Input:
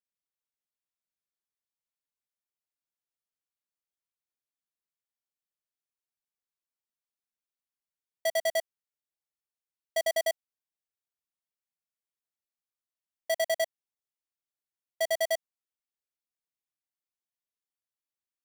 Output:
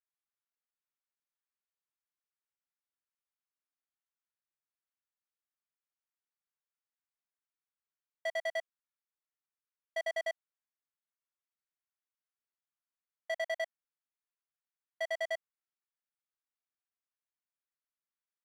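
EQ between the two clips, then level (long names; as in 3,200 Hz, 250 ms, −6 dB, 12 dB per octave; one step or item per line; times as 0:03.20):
resonant band-pass 1,400 Hz, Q 1.3
0.0 dB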